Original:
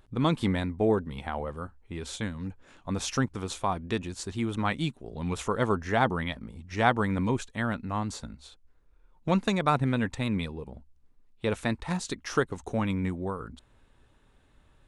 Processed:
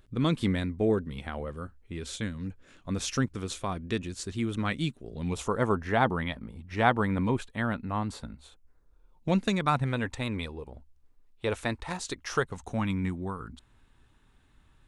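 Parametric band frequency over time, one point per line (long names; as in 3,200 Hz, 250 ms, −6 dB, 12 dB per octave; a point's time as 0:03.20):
parametric band −9 dB 0.75 octaves
0:05.19 860 Hz
0:05.80 6,400 Hz
0:08.32 6,400 Hz
0:09.54 830 Hz
0:09.99 180 Hz
0:12.05 180 Hz
0:12.93 540 Hz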